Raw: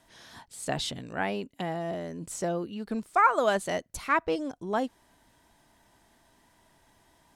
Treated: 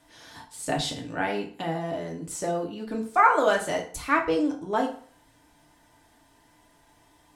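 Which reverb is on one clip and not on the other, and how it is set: FDN reverb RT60 0.47 s, low-frequency decay 0.9×, high-frequency decay 0.8×, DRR 0 dB

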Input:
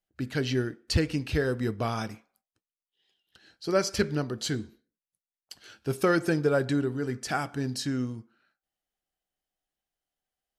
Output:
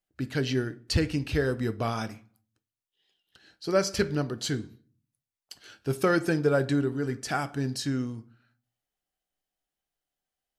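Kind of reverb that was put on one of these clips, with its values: simulated room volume 290 m³, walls furnished, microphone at 0.3 m

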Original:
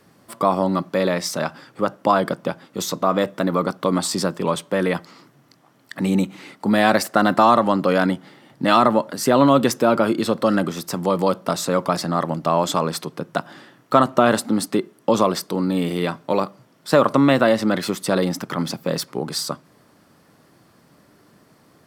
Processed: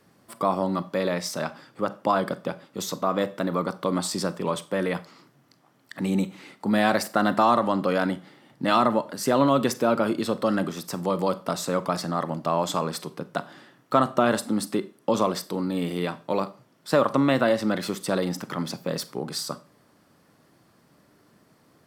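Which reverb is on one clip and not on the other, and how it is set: Schroeder reverb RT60 0.33 s, combs from 30 ms, DRR 15 dB; trim -5.5 dB

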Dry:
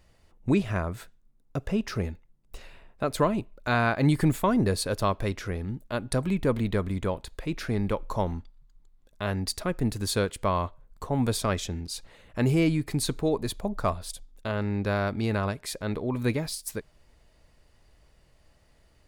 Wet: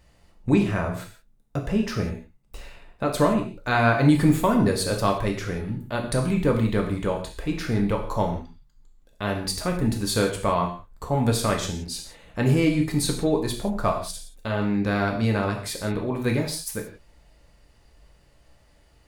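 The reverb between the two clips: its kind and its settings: gated-style reverb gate 200 ms falling, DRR 1 dB; trim +1.5 dB

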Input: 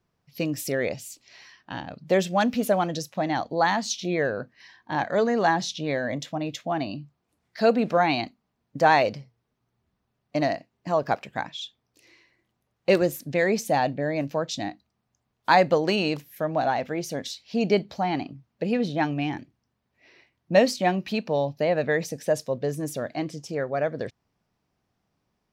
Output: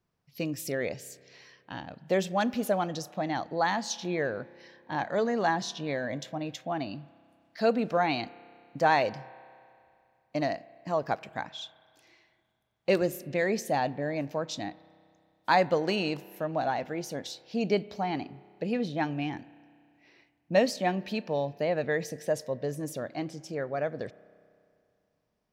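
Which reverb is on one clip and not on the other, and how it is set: spring tank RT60 2.4 s, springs 31 ms, chirp 55 ms, DRR 19.5 dB; trim -5 dB

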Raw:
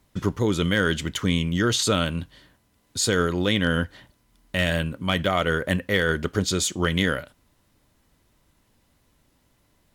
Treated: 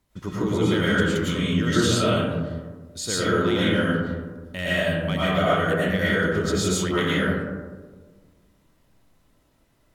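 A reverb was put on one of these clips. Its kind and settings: algorithmic reverb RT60 1.5 s, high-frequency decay 0.3×, pre-delay 70 ms, DRR -9 dB; trim -8.5 dB

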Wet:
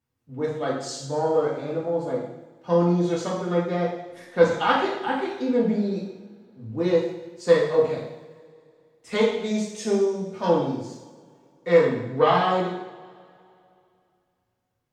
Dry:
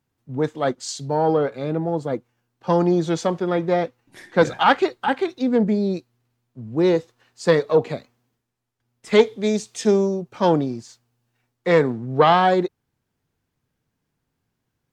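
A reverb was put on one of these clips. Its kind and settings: two-slope reverb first 0.81 s, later 2.7 s, from -20 dB, DRR -5 dB; trim -9.5 dB

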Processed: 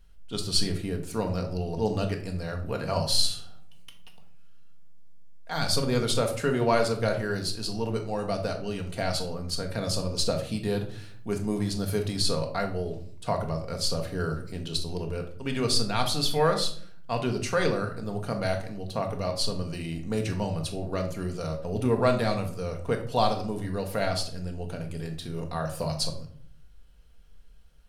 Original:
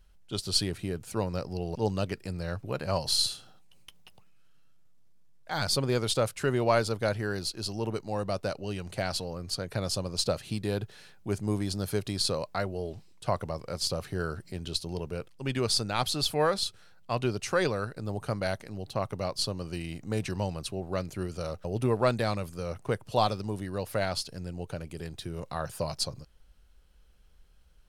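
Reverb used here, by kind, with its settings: simulated room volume 680 m³, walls furnished, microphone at 1.7 m

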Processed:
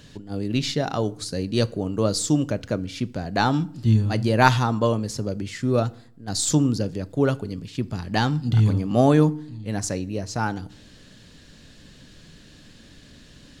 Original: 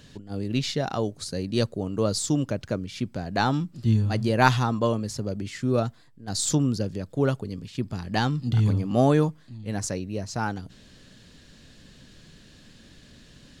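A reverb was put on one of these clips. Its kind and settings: FDN reverb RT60 0.59 s, low-frequency decay 1.3×, high-frequency decay 0.75×, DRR 16.5 dB; trim +2.5 dB

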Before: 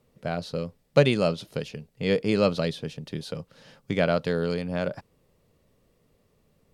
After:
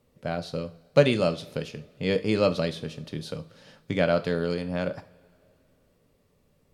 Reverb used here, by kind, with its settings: two-slope reverb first 0.39 s, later 2.7 s, from -22 dB, DRR 9.5 dB; trim -1 dB

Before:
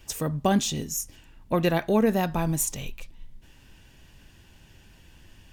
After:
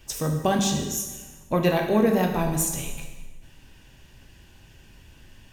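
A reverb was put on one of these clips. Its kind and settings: plate-style reverb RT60 1.3 s, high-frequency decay 0.85×, DRR 2.5 dB

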